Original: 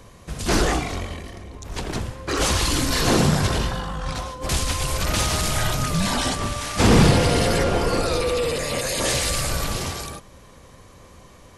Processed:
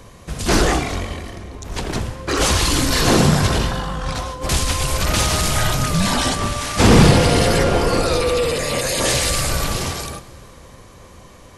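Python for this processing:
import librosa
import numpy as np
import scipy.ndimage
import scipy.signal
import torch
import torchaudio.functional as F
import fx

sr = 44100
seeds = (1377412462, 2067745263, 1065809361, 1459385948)

y = fx.rev_plate(x, sr, seeds[0], rt60_s=3.2, hf_ratio=0.75, predelay_ms=0, drr_db=16.5)
y = y * 10.0 ** (4.0 / 20.0)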